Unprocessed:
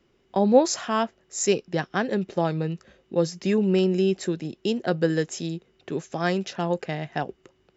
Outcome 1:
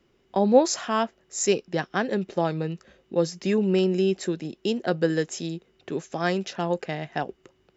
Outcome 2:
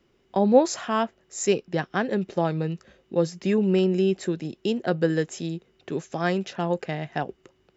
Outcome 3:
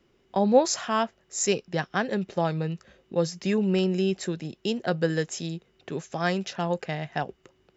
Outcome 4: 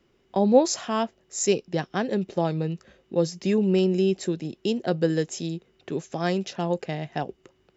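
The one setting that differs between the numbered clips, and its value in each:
dynamic bell, frequency: 110 Hz, 5.5 kHz, 320 Hz, 1.5 kHz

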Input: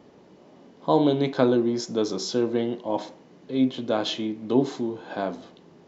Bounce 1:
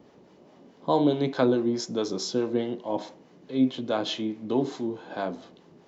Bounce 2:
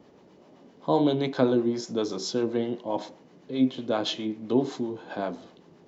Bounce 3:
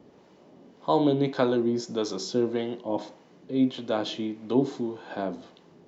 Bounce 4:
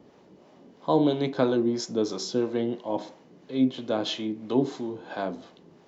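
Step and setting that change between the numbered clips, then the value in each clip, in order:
harmonic tremolo, rate: 4.7 Hz, 7.7 Hz, 1.7 Hz, 3 Hz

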